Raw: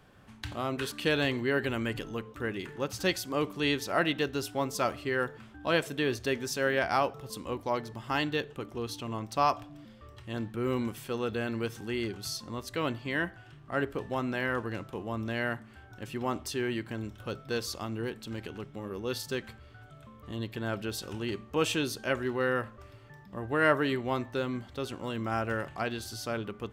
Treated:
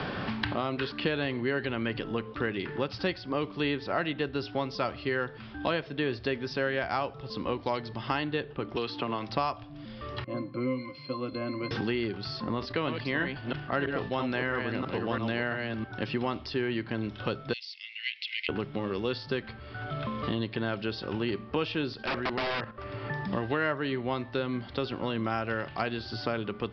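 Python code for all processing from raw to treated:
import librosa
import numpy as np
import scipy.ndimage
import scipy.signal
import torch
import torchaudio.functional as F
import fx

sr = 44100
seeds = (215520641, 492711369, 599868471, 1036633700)

y = fx.chain(x, sr, fx.highpass(hz=430.0, slope=6),
    fx.band_squash(depth_pct=100), at=(8.76, 9.29))
y = fx.chain(y, sr, fx.highpass(hz=200.0, slope=12),
    fx.octave_resonator(note='C', decay_s=0.14), at=(10.24, 11.71))
y = fx.chain(y, sr, fx.reverse_delay(ms=330, wet_db=-5.0),
    fx.sustainer(db_per_s=100.0), at=(12.54, 15.84))
y = fx.chain(y, sr, fx.cheby_ripple_highpass(hz=2000.0, ripple_db=3),
    fx.band_squash(depth_pct=70), at=(17.53, 18.49))
y = fx.chain(y, sr, fx.high_shelf(hz=2100.0, db=8.0),
    fx.level_steps(step_db=10),
    fx.overflow_wrap(gain_db=28.5), at=(21.93, 22.84))
y = scipy.signal.sosfilt(scipy.signal.butter(16, 5200.0, 'lowpass', fs=sr, output='sos'), y)
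y = fx.band_squash(y, sr, depth_pct=100)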